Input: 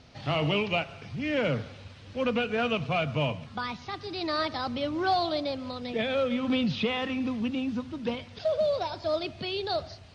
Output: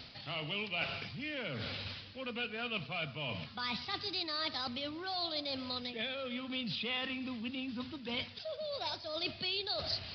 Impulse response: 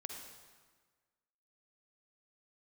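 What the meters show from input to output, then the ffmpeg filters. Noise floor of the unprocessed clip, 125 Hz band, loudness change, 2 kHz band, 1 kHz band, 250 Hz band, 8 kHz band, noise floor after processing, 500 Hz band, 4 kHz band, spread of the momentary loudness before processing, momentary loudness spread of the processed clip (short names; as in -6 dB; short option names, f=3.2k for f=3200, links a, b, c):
-48 dBFS, -12.0 dB, -8.0 dB, -5.5 dB, -11.5 dB, -12.0 dB, n/a, -51 dBFS, -13.5 dB, -1.0 dB, 8 LU, 5 LU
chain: -af "areverse,acompressor=threshold=-41dB:ratio=16,areverse,equalizer=f=210:w=1.5:g=3,crystalizer=i=8.5:c=0,aresample=11025,aresample=44100"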